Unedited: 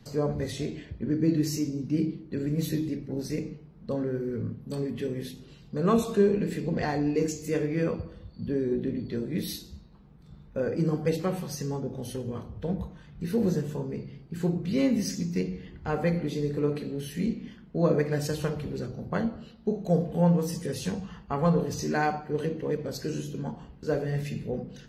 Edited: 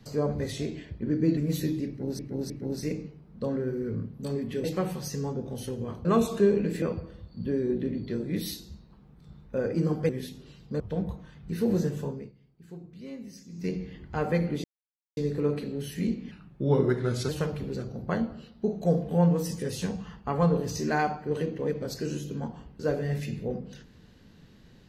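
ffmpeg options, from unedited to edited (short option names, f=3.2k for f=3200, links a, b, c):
-filter_complex "[0:a]asplit=14[a][b][c][d][e][f][g][h][i][j][k][l][m][n];[a]atrim=end=1.372[o];[b]atrim=start=2.458:end=3.282[p];[c]atrim=start=2.968:end=3.282[q];[d]atrim=start=2.968:end=5.112[r];[e]atrim=start=11.108:end=12.522[s];[f]atrim=start=5.818:end=6.592[t];[g]atrim=start=7.838:end=11.112[u];[h]atrim=start=5.108:end=5.822[v];[i]atrim=start=12.518:end=14.04,asetpts=PTS-STARTPTS,afade=t=out:st=1.272:d=0.25:silence=0.149624[w];[j]atrim=start=14.04:end=15.22,asetpts=PTS-STARTPTS,volume=-16.5dB[x];[k]atrim=start=15.22:end=16.36,asetpts=PTS-STARTPTS,afade=t=in:d=0.25:silence=0.149624,afade=t=out:st=1.136:d=0.004:c=hsin,apad=pad_dur=0.53[y];[l]atrim=start=16.36:end=17.504,asetpts=PTS-STARTPTS,afade=t=in:d=0.004:c=hsin[z];[m]atrim=start=17.5:end=18.32,asetpts=PTS-STARTPTS,asetrate=37044,aresample=44100[aa];[n]atrim=start=18.316[ab];[o][p]acrossfade=d=0.004:c1=hsin:c2=hsin[ac];[ac][q]acrossfade=d=0.004:c1=hsin:c2=hsin[ad];[ad][r]acrossfade=d=0.004:c1=hsin:c2=hsin[ae];[ae][s]acrossfade=d=0.004:c1=hsin:c2=hsin[af];[af][t]acrossfade=d=0.004:c1=hsin:c2=hsin[ag];[ag][u]acrossfade=d=0.004:c1=hsin:c2=hsin[ah];[ah][v]acrossfade=d=0.004:c1=hsin:c2=hsin[ai];[w][x][y][z]concat=n=4:v=0:a=1[aj];[ai][aj]acrossfade=d=0.004:c1=hsin:c2=hsin[ak];[ak][aa]acrossfade=d=0.004:c1=hsin:c2=hsin[al];[al][ab]acrossfade=d=0.004:c1=hsin:c2=hsin"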